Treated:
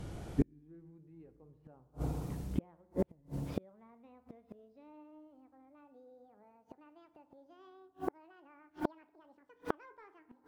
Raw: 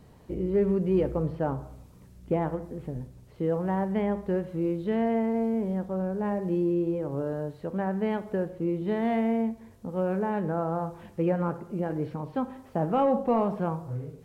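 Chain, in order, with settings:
gliding playback speed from 74% → 198%
feedback delay network reverb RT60 1.8 s, low-frequency decay 1.35×, high-frequency decay 0.3×, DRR 16.5 dB
gate with flip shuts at −27 dBFS, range −41 dB
level +9 dB

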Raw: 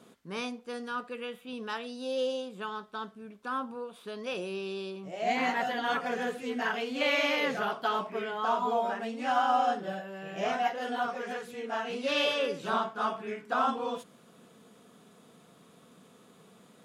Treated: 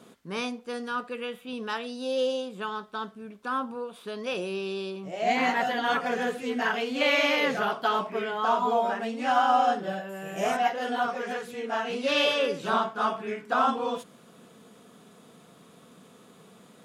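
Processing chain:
0:10.09–0:10.57: high shelf with overshoot 6,500 Hz +13 dB, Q 1.5
level +4 dB

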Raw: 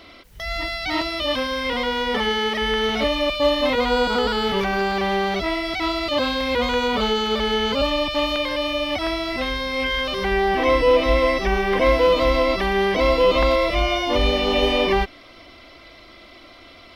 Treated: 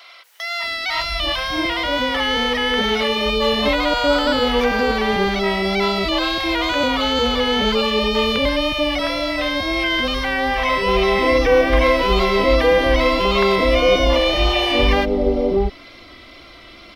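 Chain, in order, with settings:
tape wow and flutter 29 cents
multiband delay without the direct sound highs, lows 640 ms, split 680 Hz
level +4 dB

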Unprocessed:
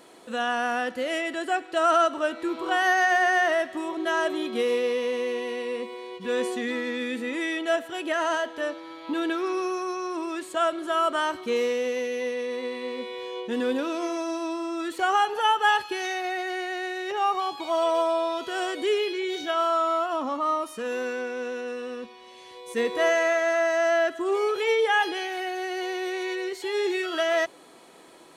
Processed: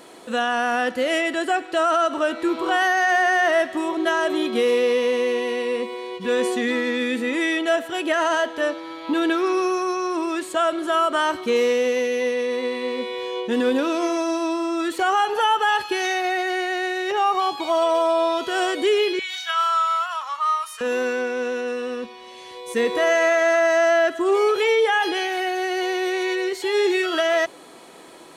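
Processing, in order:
0:19.19–0:20.81: high-pass filter 1,100 Hz 24 dB per octave
brickwall limiter −18.5 dBFS, peak gain reduction 7 dB
level +6.5 dB

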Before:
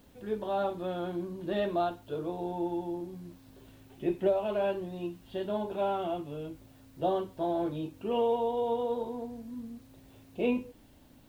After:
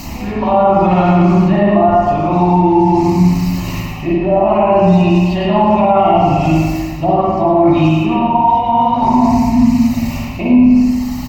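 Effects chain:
reverb reduction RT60 1.2 s
treble cut that deepens with the level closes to 640 Hz, closed at −25.5 dBFS
high-shelf EQ 2,800 Hz +8.5 dB
reversed playback
downward compressor 12 to 1, threshold −41 dBFS, peak gain reduction 18 dB
reversed playback
phaser with its sweep stopped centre 2,300 Hz, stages 8
on a send: single-tap delay 107 ms −8 dB
on the sum: spring reverb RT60 1.6 s, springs 44/56 ms, chirp 75 ms, DRR −5 dB
boost into a limiter +34 dB
level −1 dB

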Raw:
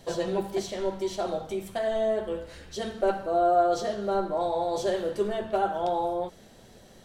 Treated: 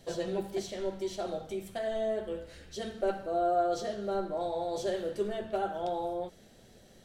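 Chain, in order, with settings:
parametric band 1,000 Hz −6.5 dB 0.6 octaves
level −4.5 dB

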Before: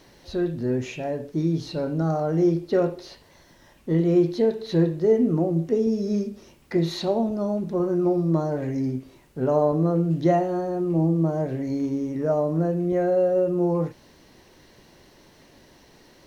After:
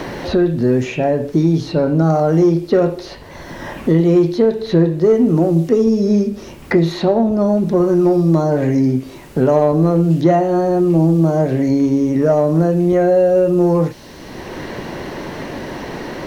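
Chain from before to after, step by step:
in parallel at −5 dB: soft clipping −17.5 dBFS, distortion −15 dB
on the sum: multiband upward and downward compressor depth 70%
level +5.5 dB

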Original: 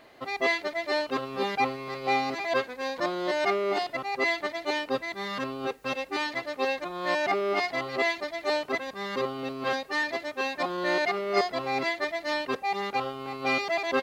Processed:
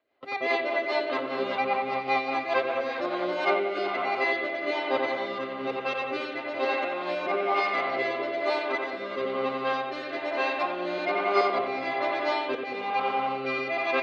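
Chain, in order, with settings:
parametric band 78 Hz +10.5 dB 0.89 octaves
delay that swaps between a low-pass and a high-pass 202 ms, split 1,400 Hz, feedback 51%, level −5 dB
noise gate with hold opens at −27 dBFS
three-way crossover with the lows and the highs turned down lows −15 dB, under 280 Hz, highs −18 dB, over 4,200 Hz
notch filter 1,800 Hz, Q 13
bucket-brigade delay 89 ms, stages 2,048, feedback 73%, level −4 dB
rotating-speaker cabinet horn 5 Hz, later 1.1 Hz, at 0:02.90
level +2 dB

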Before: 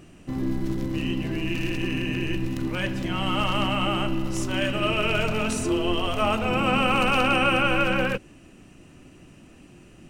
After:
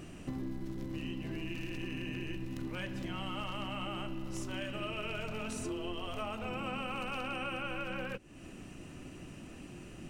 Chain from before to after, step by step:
downward compressor 6 to 1, threshold −38 dBFS, peak gain reduction 19 dB
level +1 dB

